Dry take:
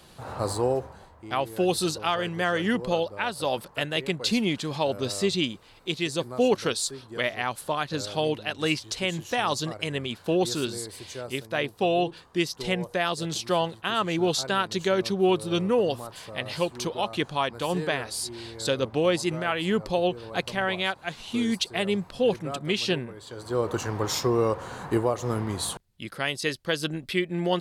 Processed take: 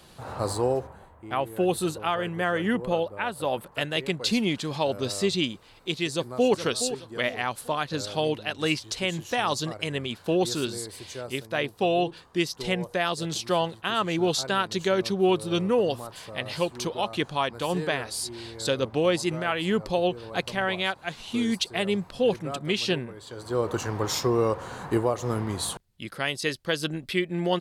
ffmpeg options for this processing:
-filter_complex "[0:a]asettb=1/sr,asplit=3[s0][s1][s2];[s0]atrim=end=0.874[s3];[s1]atrim=start=0.87:end=3.72,asetpts=PTS-STARTPTS,afade=t=in:d=0.004:c=qsin,afade=t=out:st=2.846:d=0.004:c=qsin,equalizer=f=5100:t=o:w=0.87:g=-13.5[s4];[s2]atrim=start=3.716[s5];[s3][s4]acrossfade=d=0.004:c1=hsin:c2=qsin[s6];[s6][s5]acrossfade=d=0.004:c1=qsin:c2=hsin,asplit=2[s7][s8];[s8]afade=t=in:st=6.11:d=0.01,afade=t=out:st=6.52:d=0.01,aecho=0:1:420|840|1260|1680:0.316228|0.11068|0.0387379|0.0135583[s9];[s7][s9]amix=inputs=2:normalize=0"

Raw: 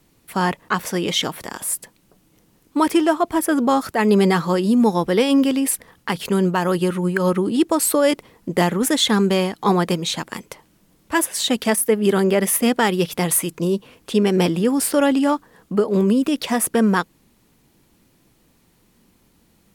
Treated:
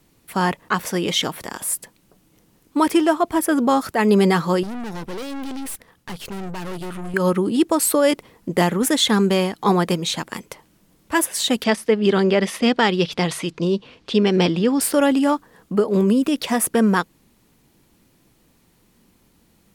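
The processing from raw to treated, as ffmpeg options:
-filter_complex "[0:a]asettb=1/sr,asplit=3[s0][s1][s2];[s0]atrim=end=4.634[s3];[s1]atrim=start=4.63:end=7.14,asetpts=PTS-STARTPTS,afade=t=in:d=0.004:c=qsin,afade=t=out:st=2.506:d=0.004:c=qsin,aeval=exprs='(tanh(28.2*val(0)+0.75)-tanh(0.75))/28.2':c=same[s4];[s2]atrim=start=7.136[s5];[s3][s4]acrossfade=d=0.004:c1=hsin:c2=qsin[s6];[s6][s5]acrossfade=d=0.004:c1=qsin:c2=hsin,asettb=1/sr,asplit=3[s7][s8][s9];[s7]atrim=end=11.644[s10];[s8]atrim=start=11.64:end=14.81,asetpts=PTS-STARTPTS,afade=t=in:d=0.004:c=qsin,afade=t=out:st=3.166:d=0.004:c=qsin,lowpass=f=4400:t=q:w=1.6[s11];[s9]atrim=start=14.806[s12];[s10][s11]acrossfade=d=0.004:c1=hsin:c2=qsin[s13];[s13][s12]acrossfade=d=0.004:c1=qsin:c2=hsin"

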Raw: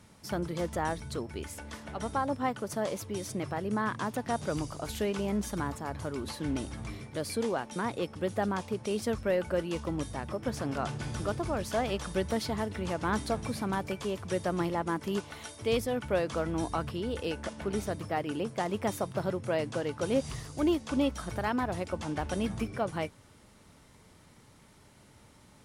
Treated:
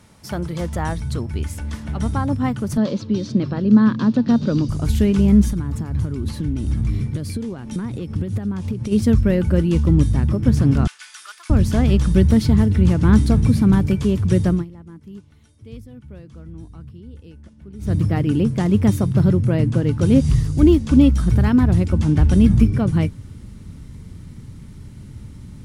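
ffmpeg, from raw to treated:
-filter_complex "[0:a]asettb=1/sr,asplit=3[s0][s1][s2];[s0]atrim=end=2.774[s3];[s1]atrim=start=2.77:end=4.69,asetpts=PTS-STARTPTS,afade=t=in:d=0.004:c=qsin,afade=t=out:st=1.916:d=0.004:c=qsin,highpass=190,equalizer=f=230:t=q:w=4:g=8,equalizer=f=540:t=q:w=4:g=6,equalizer=f=770:t=q:w=4:g=-4,equalizer=f=2100:t=q:w=4:g=-7,equalizer=f=4200:t=q:w=4:g=7,lowpass=f=5300:w=0.5412,lowpass=f=5300:w=1.3066[s4];[s2]atrim=start=4.686[s5];[s3][s4]acrossfade=d=0.004:c1=hsin:c2=qsin[s6];[s6][s5]acrossfade=d=0.004:c1=qsin:c2=hsin,asplit=3[s7][s8][s9];[s7]afade=t=out:st=5.5:d=0.02[s10];[s8]acompressor=threshold=0.0126:ratio=6:attack=3.2:release=140:knee=1:detection=peak,afade=t=in:st=5.5:d=0.02,afade=t=out:st=8.91:d=0.02[s11];[s9]afade=t=in:st=8.91:d=0.02[s12];[s10][s11][s12]amix=inputs=3:normalize=0,asettb=1/sr,asplit=3[s13][s14][s15];[s13]atrim=end=10.874[s16];[s14]atrim=start=10.87:end=11.5,asetpts=PTS-STARTPTS,afade=t=in:d=0.004:c=qsin,afade=t=out:st=0.626:d=0.004:c=qsin,highpass=f=1300:w=0.5412,highpass=f=1300:w=1.3066[s17];[s15]atrim=start=11.496[s18];[s16][s17]acrossfade=d=0.004:c1=hsin:c2=qsin[s19];[s19][s18]acrossfade=d=0.004:c1=qsin:c2=hsin,asettb=1/sr,asplit=3[s20][s21][s22];[s20]atrim=end=19.444[s23];[s21]atrim=start=19.44:end=19.88,asetpts=PTS-STARTPTS,afade=t=in:d=0.004:c=qsin,afade=t=out:st=0.436:d=0.004:c=qsin,equalizer=f=5300:w=0.54:g=-5[s24];[s22]atrim=start=19.876[s25];[s23][s24]acrossfade=d=0.004:c1=hsin:c2=qsin[s26];[s26][s25]acrossfade=d=0.004:c1=qsin:c2=hsin,asplit=3[s27][s28][s29];[s27]atrim=end=14.65,asetpts=PTS-STARTPTS,afade=t=out:st=14.47:d=0.18:silence=0.0707946[s30];[s28]atrim=start=14.65:end=17.79,asetpts=PTS-STARTPTS,volume=0.0708[s31];[s29]atrim=start=17.79,asetpts=PTS-STARTPTS,afade=t=in:d=0.18:silence=0.0707946[s32];[s30][s31][s32]concat=n=3:v=0:a=1,asubboost=boost=11:cutoff=200,volume=2"

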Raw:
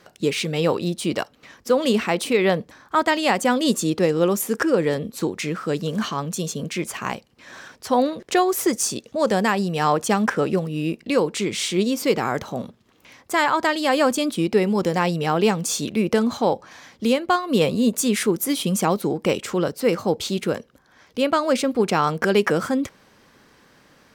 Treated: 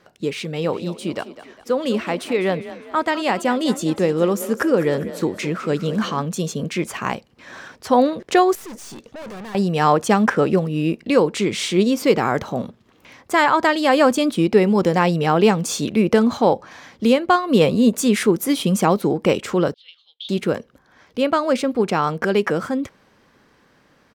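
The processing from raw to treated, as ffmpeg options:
-filter_complex "[0:a]asplit=3[s0][s1][s2];[s0]afade=t=out:st=0.61:d=0.02[s3];[s1]asplit=5[s4][s5][s6][s7][s8];[s5]adelay=203,afreqshift=33,volume=0.2[s9];[s6]adelay=406,afreqshift=66,volume=0.0881[s10];[s7]adelay=609,afreqshift=99,volume=0.0385[s11];[s8]adelay=812,afreqshift=132,volume=0.017[s12];[s4][s9][s10][s11][s12]amix=inputs=5:normalize=0,afade=t=in:st=0.61:d=0.02,afade=t=out:st=6.21:d=0.02[s13];[s2]afade=t=in:st=6.21:d=0.02[s14];[s3][s13][s14]amix=inputs=3:normalize=0,asettb=1/sr,asplit=3[s15][s16][s17];[s15]atrim=end=8.554[s18];[s16]atrim=start=8.55:end=9.55,asetpts=PTS-STARTPTS,afade=t=in:d=0.004:c=qsin,afade=t=out:st=0.996:d=0.004:c=qsin,aeval=exprs='(tanh(70.8*val(0)+0.3)-tanh(0.3))/70.8':c=same[s19];[s17]atrim=start=9.546[s20];[s18][s19]acrossfade=d=0.004:c1=hsin:c2=qsin[s21];[s21][s20]acrossfade=d=0.004:c1=qsin:c2=hsin,asettb=1/sr,asplit=3[s22][s23][s24];[s22]atrim=end=19.744[s25];[s23]atrim=start=19.74:end=20.29,asetpts=PTS-STARTPTS,afade=t=in:d=0.004:c=qsin,afade=t=out:st=0.546:d=0.004:c=qsin,asuperpass=centerf=3400:order=4:qfactor=4.7[s26];[s24]atrim=start=20.286[s27];[s25][s26]acrossfade=d=0.004:c1=hsin:c2=qsin[s28];[s28][s27]acrossfade=d=0.004:c1=qsin:c2=hsin,highshelf=f=4000:g=-7,dynaudnorm=f=540:g=17:m=3.76,volume=0.794"

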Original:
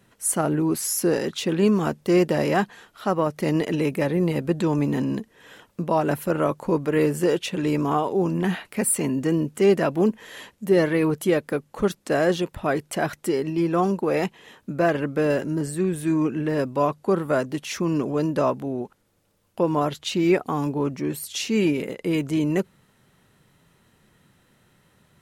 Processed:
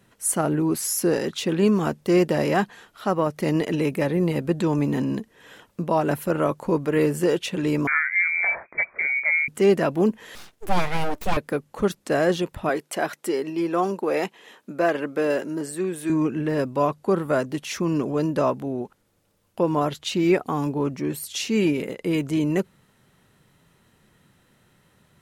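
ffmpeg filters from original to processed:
-filter_complex "[0:a]asettb=1/sr,asplit=3[s0][s1][s2];[s0]atrim=end=7.874[s3];[s1]atrim=start=7.87:end=9.48,asetpts=PTS-STARTPTS,afade=t=in:d=0.004:c=qsin,afade=t=out:st=1.606:d=0.004:c=qsin,lowpass=f=2100:t=q:w=0.5098,lowpass=f=2100:t=q:w=0.6013,lowpass=f=2100:t=q:w=0.9,lowpass=f=2100:t=q:w=2.563,afreqshift=-2500[s4];[s2]atrim=start=9.476[s5];[s3][s4]acrossfade=d=0.004:c1=hsin:c2=qsin[s6];[s6][s5]acrossfade=d=0.004:c1=qsin:c2=hsin,asettb=1/sr,asplit=3[s7][s8][s9];[s7]atrim=end=10.354[s10];[s8]atrim=start=10.35:end=11.37,asetpts=PTS-STARTPTS,afade=t=in:d=0.004:c=qsin,afade=t=out:st=1.016:d=0.004:c=qsin,aeval=exprs='abs(val(0))':c=same[s11];[s9]atrim=start=11.366[s12];[s10][s11]acrossfade=d=0.004:c1=hsin:c2=qsin[s13];[s13][s12]acrossfade=d=0.004:c1=qsin:c2=hsin,asettb=1/sr,asplit=3[s14][s15][s16];[s14]atrim=end=12.694[s17];[s15]atrim=start=12.69:end=16.1,asetpts=PTS-STARTPTS,afade=t=in:d=0.004:c=qsin,afade=t=out:st=3.406:d=0.004:c=qsin,highpass=280[s18];[s16]atrim=start=16.096[s19];[s17][s18]acrossfade=d=0.004:c1=hsin:c2=qsin[s20];[s20][s19]acrossfade=d=0.004:c1=qsin:c2=hsin"

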